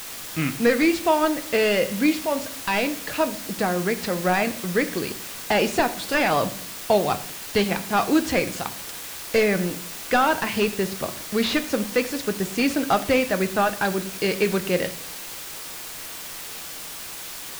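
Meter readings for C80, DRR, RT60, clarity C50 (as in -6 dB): 17.5 dB, 9.5 dB, 0.55 s, 15.0 dB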